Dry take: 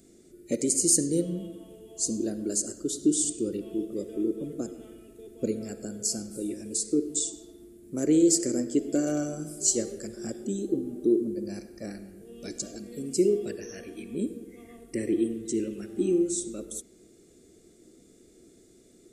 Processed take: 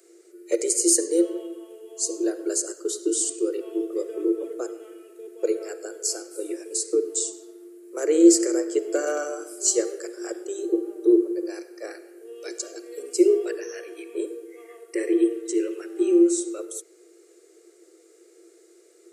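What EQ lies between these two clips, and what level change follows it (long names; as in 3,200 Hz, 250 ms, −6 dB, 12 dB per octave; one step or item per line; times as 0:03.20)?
notch filter 3,500 Hz, Q 11
dynamic equaliser 980 Hz, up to +5 dB, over −43 dBFS, Q 0.75
Chebyshev high-pass with heavy ripple 330 Hz, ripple 6 dB
+8.0 dB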